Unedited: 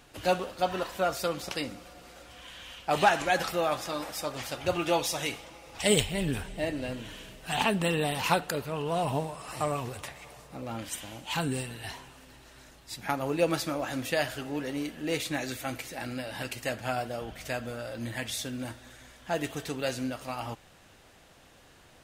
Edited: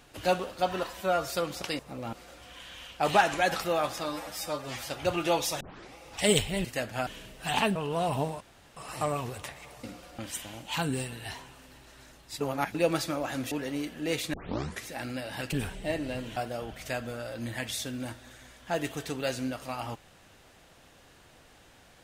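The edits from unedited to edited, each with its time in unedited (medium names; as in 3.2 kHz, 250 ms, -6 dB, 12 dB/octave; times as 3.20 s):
0.89–1.15 s: stretch 1.5×
1.66–2.01 s: swap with 10.43–10.77 s
3.97–4.50 s: stretch 1.5×
5.22 s: tape start 0.35 s
6.26–7.10 s: swap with 16.54–16.96 s
7.79–8.71 s: delete
9.36 s: insert room tone 0.36 s
12.99–13.33 s: reverse
14.10–14.53 s: delete
15.35 s: tape start 0.54 s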